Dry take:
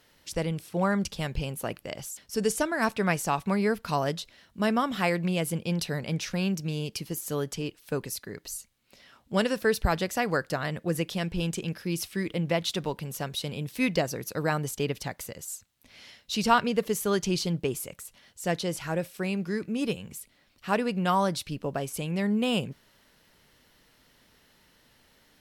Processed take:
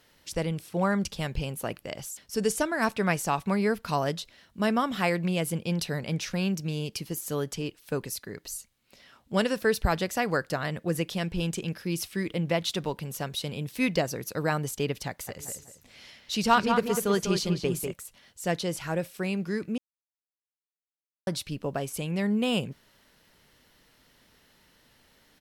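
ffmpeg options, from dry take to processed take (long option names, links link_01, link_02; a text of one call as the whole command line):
ffmpeg -i in.wav -filter_complex "[0:a]asplit=3[link_01][link_02][link_03];[link_01]afade=type=out:start_time=15.27:duration=0.02[link_04];[link_02]asplit=2[link_05][link_06];[link_06]adelay=196,lowpass=frequency=3000:poles=1,volume=-5.5dB,asplit=2[link_07][link_08];[link_08]adelay=196,lowpass=frequency=3000:poles=1,volume=0.32,asplit=2[link_09][link_10];[link_10]adelay=196,lowpass=frequency=3000:poles=1,volume=0.32,asplit=2[link_11][link_12];[link_12]adelay=196,lowpass=frequency=3000:poles=1,volume=0.32[link_13];[link_05][link_07][link_09][link_11][link_13]amix=inputs=5:normalize=0,afade=type=in:start_time=15.27:duration=0.02,afade=type=out:start_time=17.91:duration=0.02[link_14];[link_03]afade=type=in:start_time=17.91:duration=0.02[link_15];[link_04][link_14][link_15]amix=inputs=3:normalize=0,asplit=3[link_16][link_17][link_18];[link_16]atrim=end=19.78,asetpts=PTS-STARTPTS,afade=type=out:start_time=19.776:duration=0.004:curve=hsin[link_19];[link_17]atrim=start=19.78:end=21.27,asetpts=PTS-STARTPTS,volume=0[link_20];[link_18]atrim=start=21.27,asetpts=PTS-STARTPTS,afade=type=in:duration=0.004:curve=hsin[link_21];[link_19][link_20][link_21]concat=n=3:v=0:a=1" out.wav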